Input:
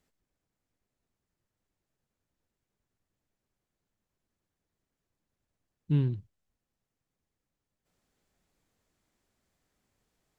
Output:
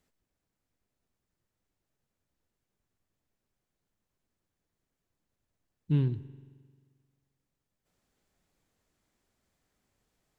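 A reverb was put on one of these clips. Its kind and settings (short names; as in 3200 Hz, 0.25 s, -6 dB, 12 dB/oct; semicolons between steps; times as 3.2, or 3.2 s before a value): spring tank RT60 1.7 s, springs 44 ms, chirp 35 ms, DRR 15.5 dB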